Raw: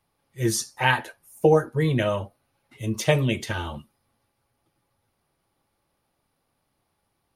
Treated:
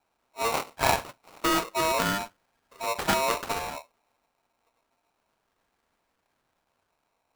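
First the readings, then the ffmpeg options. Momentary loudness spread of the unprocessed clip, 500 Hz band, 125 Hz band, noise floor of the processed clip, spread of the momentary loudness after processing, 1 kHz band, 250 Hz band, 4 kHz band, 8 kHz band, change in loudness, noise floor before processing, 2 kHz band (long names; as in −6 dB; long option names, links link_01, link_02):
15 LU, −7.0 dB, −15.5 dB, −77 dBFS, 11 LU, +2.5 dB, −7.0 dB, +0.5 dB, −1.0 dB, −3.5 dB, −75 dBFS, −3.0 dB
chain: -filter_complex "[0:a]acrossover=split=940[link_01][link_02];[link_01]asoftclip=type=tanh:threshold=-20dB[link_03];[link_02]acrusher=samples=34:mix=1:aa=0.000001:lfo=1:lforange=34:lforate=0.29[link_04];[link_03][link_04]amix=inputs=2:normalize=0,aeval=exprs='val(0)*sgn(sin(2*PI*800*n/s))':channel_layout=same,volume=-1dB"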